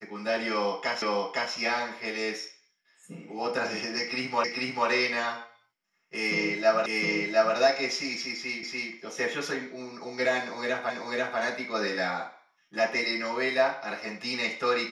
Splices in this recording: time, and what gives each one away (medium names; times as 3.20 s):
1.02 s: repeat of the last 0.51 s
4.44 s: repeat of the last 0.44 s
6.86 s: repeat of the last 0.71 s
8.63 s: repeat of the last 0.29 s
10.90 s: repeat of the last 0.49 s